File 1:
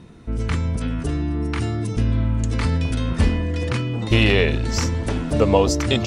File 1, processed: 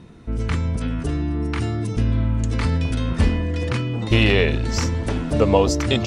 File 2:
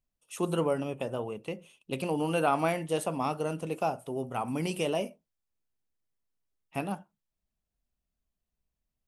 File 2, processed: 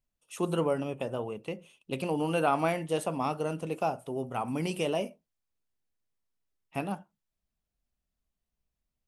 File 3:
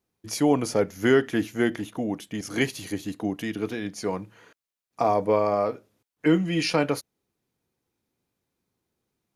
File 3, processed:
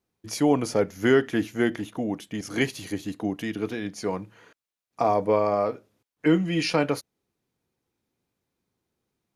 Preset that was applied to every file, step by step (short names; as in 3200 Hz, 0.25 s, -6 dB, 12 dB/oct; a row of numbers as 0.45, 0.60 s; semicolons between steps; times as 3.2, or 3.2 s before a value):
high shelf 8100 Hz -4 dB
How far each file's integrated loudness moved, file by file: 0.0, 0.0, 0.0 LU